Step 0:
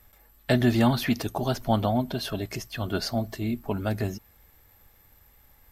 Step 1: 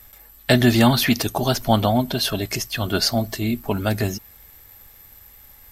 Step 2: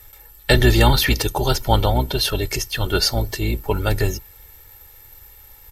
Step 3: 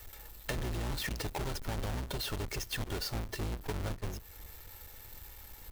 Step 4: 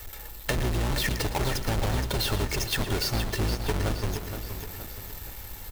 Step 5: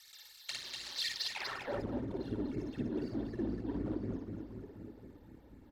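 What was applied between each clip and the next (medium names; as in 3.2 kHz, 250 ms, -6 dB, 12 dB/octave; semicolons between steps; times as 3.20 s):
treble shelf 2.3 kHz +8 dB; trim +5.5 dB
octave divider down 2 oct, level -3 dB; comb 2.2 ms, depth 64%
square wave that keeps the level; peak limiter -11.5 dBFS, peak gain reduction 35.5 dB; compression 10:1, threshold -26 dBFS, peak gain reduction 13 dB; trim -8 dB
delay 114 ms -14 dB; bit-crushed delay 470 ms, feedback 55%, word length 9-bit, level -8 dB; trim +8.5 dB
phase shifter stages 12, 4 Hz, lowest notch 120–1100 Hz; band-pass sweep 4.4 kHz -> 280 Hz, 1.24–1.85 s; loudspeakers at several distances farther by 19 m -2 dB, 84 m -5 dB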